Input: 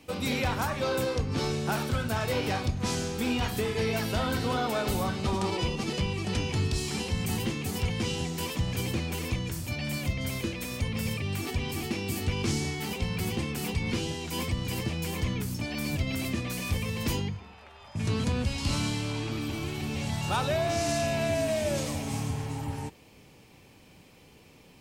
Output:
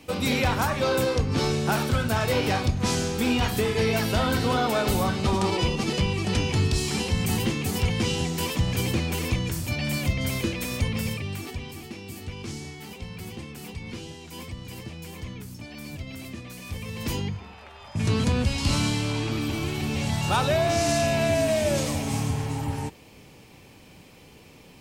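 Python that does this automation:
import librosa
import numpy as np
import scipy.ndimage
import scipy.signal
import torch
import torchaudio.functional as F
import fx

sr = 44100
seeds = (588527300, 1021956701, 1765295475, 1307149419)

y = fx.gain(x, sr, db=fx.line((10.84, 5.0), (11.83, -7.0), (16.61, -7.0), (17.44, 5.0)))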